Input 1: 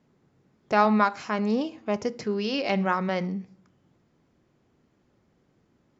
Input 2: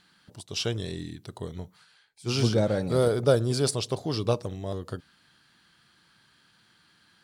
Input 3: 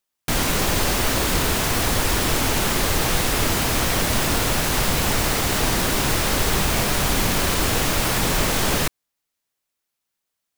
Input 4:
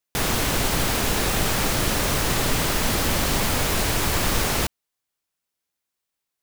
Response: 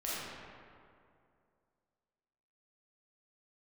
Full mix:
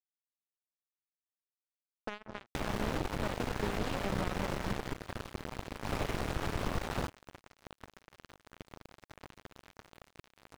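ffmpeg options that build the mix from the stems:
-filter_complex "[0:a]adelay=1350,volume=-6.5dB[a];[1:a]volume=-20dB,asplit=2[b][c];[2:a]aeval=exprs='val(0)*sin(2*PI*100*n/s)':c=same,adelay=2200,volume=-12.5dB[d];[3:a]asoftclip=type=tanh:threshold=-12.5dB,adelay=2400,volume=8.5dB,afade=t=out:st=4.54:d=0.43:silence=0.316228,afade=t=in:st=5.81:d=0.29:silence=0.237137[e];[c]apad=whole_len=563246[f];[d][f]sidechaincompress=threshold=-57dB:ratio=8:attack=38:release=308[g];[a][g]amix=inputs=2:normalize=0,acompressor=threshold=-35dB:ratio=6,volume=0dB[h];[b][e]amix=inputs=2:normalize=0,acompressor=threshold=-29dB:ratio=12,volume=0dB[i];[h][i]amix=inputs=2:normalize=0,lowpass=f=1k:p=1,acrusher=bits=4:mix=0:aa=0.5"

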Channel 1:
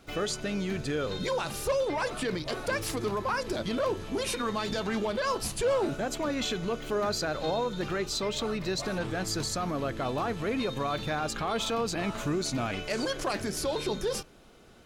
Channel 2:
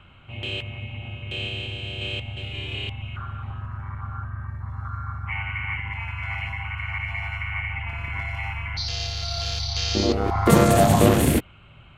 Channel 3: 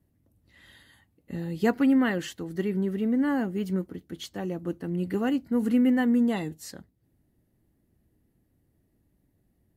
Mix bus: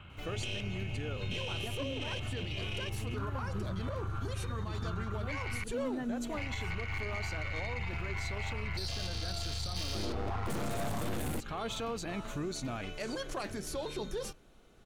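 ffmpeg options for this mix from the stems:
-filter_complex "[0:a]bandreject=f=5k:w=10,adelay=100,volume=-7.5dB[a];[1:a]highpass=58,aeval=exprs='(tanh(17.8*val(0)+0.4)-tanh(0.4))/17.8':c=same,volume=-0.5dB,asplit=3[b][c][d];[b]atrim=end=5.64,asetpts=PTS-STARTPTS,afade=t=out:st=5.636:d=0.004:c=hsin[e];[c]atrim=start=5.64:end=6.37,asetpts=PTS-STARTPTS,volume=0[f];[d]atrim=start=6.37,asetpts=PTS-STARTPTS,afade=t=in:d=0.004:c=hsin[g];[e][f][g]concat=n=3:v=0:a=1[h];[2:a]aphaser=in_gain=1:out_gain=1:delay=3.2:decay=0.58:speed=0.83:type=sinusoidal,volume=-16dB[i];[a][h][i]amix=inputs=3:normalize=0,lowshelf=f=63:g=9,alimiter=level_in=3.5dB:limit=-24dB:level=0:latency=1:release=143,volume=-3.5dB"

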